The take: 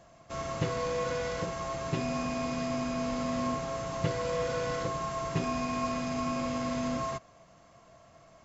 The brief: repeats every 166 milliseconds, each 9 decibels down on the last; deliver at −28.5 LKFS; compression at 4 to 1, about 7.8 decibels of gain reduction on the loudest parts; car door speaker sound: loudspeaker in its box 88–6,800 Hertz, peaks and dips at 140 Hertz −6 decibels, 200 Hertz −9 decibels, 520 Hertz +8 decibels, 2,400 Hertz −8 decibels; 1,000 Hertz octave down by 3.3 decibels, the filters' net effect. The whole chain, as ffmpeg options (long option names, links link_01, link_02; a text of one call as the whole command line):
ffmpeg -i in.wav -af "equalizer=frequency=1000:width_type=o:gain=-4.5,acompressor=threshold=-35dB:ratio=4,highpass=88,equalizer=frequency=140:width_type=q:width=4:gain=-6,equalizer=frequency=200:width_type=q:width=4:gain=-9,equalizer=frequency=520:width_type=q:width=4:gain=8,equalizer=frequency=2400:width_type=q:width=4:gain=-8,lowpass=frequency=6800:width=0.5412,lowpass=frequency=6800:width=1.3066,aecho=1:1:166|332|498|664:0.355|0.124|0.0435|0.0152,volume=9dB" out.wav